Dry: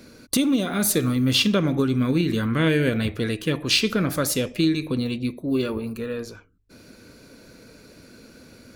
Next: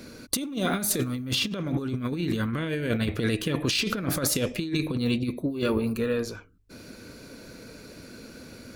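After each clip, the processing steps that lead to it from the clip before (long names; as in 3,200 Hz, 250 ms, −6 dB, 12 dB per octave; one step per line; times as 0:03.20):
brickwall limiter −15 dBFS, peak gain reduction 9 dB
compressor whose output falls as the input rises −26 dBFS, ratio −0.5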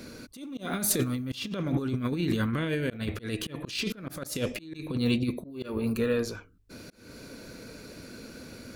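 volume swells 269 ms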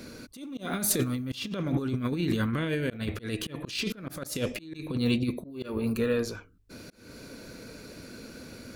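no processing that can be heard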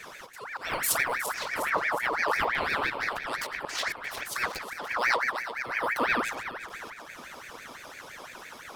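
feedback delay that plays each chunk backwards 181 ms, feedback 73%, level −11 dB
ring modulator whose carrier an LFO sweeps 1,400 Hz, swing 50%, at 5.9 Hz
level +2.5 dB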